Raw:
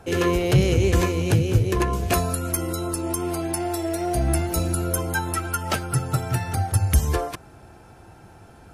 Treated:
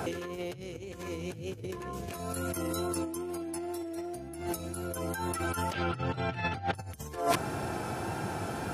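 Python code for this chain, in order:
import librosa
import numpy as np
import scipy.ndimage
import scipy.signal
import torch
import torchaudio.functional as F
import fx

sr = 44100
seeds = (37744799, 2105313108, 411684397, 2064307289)

y = fx.wow_flutter(x, sr, seeds[0], rate_hz=2.1, depth_cents=26.0)
y = fx.peak_eq(y, sr, hz=310.0, db=10.0, octaves=0.38, at=(3.05, 4.41), fade=0.02)
y = fx.lowpass_res(y, sr, hz=3200.0, q=2.1, at=(5.73, 6.75))
y = fx.over_compress(y, sr, threshold_db=-36.0, ratio=-1.0)
y = scipy.signal.sosfilt(scipy.signal.butter(2, 120.0, 'highpass', fs=sr, output='sos'), y)
y = y * 10.0 ** (1.5 / 20.0)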